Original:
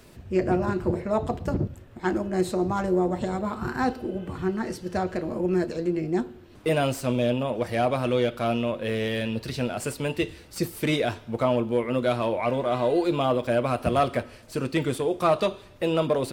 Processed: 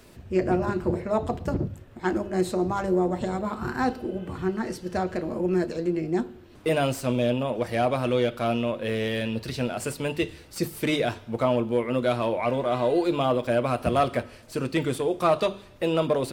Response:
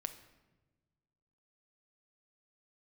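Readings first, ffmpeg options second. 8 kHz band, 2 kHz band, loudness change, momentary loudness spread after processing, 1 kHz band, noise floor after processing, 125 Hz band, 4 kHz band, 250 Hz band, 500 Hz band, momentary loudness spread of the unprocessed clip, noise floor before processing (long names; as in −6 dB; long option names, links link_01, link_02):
0.0 dB, 0.0 dB, 0.0 dB, 7 LU, 0.0 dB, −49 dBFS, −0.5 dB, 0.0 dB, 0.0 dB, 0.0 dB, 7 LU, −49 dBFS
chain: -af "bandreject=frequency=50:width_type=h:width=6,bandreject=frequency=100:width_type=h:width=6,bandreject=frequency=150:width_type=h:width=6,bandreject=frequency=200:width_type=h:width=6"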